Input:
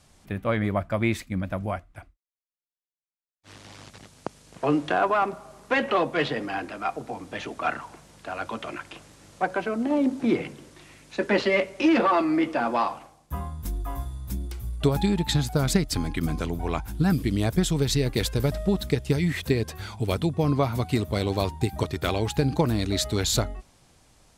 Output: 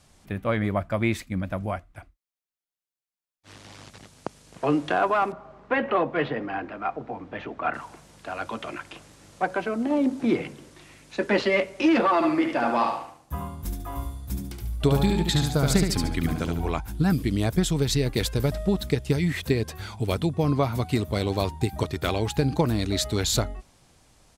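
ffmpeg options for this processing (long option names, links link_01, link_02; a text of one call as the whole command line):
ffmpeg -i in.wav -filter_complex "[0:a]asettb=1/sr,asplit=3[link_01][link_02][link_03];[link_01]atrim=end=5.324[link_04];[link_02]atrim=start=5.32:end=7.74,asetpts=PTS-STARTPTS,afade=type=in:duration=0.004:curve=qsin,afade=type=out:start_time=2.416:duration=0.004:curve=qsin,lowpass=2200[link_05];[link_03]atrim=start=7.736[link_06];[link_04][link_05]acrossfade=duration=0.004:curve1=hsin:curve2=qsin[link_07];[link_07][link_06]acrossfade=duration=0.004:curve1=qsin:curve2=hsin,asplit=3[link_08][link_09][link_10];[link_08]afade=type=out:start_time=12.21:duration=0.02[link_11];[link_09]aecho=1:1:72|144|216|288:0.596|0.208|0.073|0.0255,afade=type=in:start_time=12.21:duration=0.02,afade=type=out:start_time=16.7:duration=0.02[link_12];[link_10]afade=type=in:start_time=16.7:duration=0.02[link_13];[link_11][link_12][link_13]amix=inputs=3:normalize=0" out.wav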